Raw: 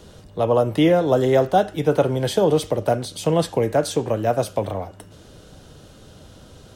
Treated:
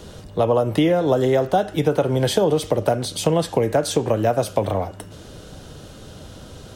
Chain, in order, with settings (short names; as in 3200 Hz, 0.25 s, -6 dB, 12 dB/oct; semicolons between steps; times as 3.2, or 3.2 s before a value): compressor 5:1, threshold -20 dBFS, peak gain reduction 8.5 dB; gain +5.5 dB